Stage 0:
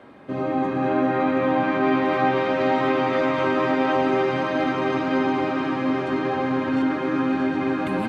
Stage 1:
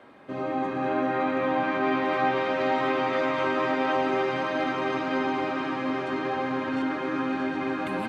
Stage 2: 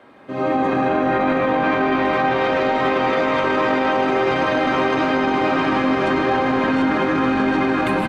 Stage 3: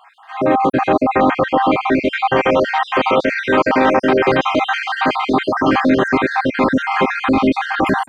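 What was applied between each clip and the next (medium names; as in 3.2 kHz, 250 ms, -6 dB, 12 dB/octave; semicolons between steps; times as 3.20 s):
bass shelf 370 Hz -7 dB; trim -2 dB
level rider gain up to 12.5 dB; peak limiter -14 dBFS, peak gain reduction 11.5 dB; frequency-shifting echo 152 ms, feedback 63%, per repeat -48 Hz, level -13 dB; trim +3 dB
random holes in the spectrogram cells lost 51%; trim +6.5 dB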